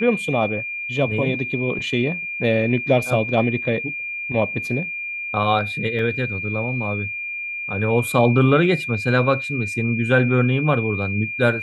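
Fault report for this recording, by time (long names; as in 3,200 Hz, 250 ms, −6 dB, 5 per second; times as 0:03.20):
whistle 2,400 Hz −26 dBFS
0:05.99: drop-out 3.1 ms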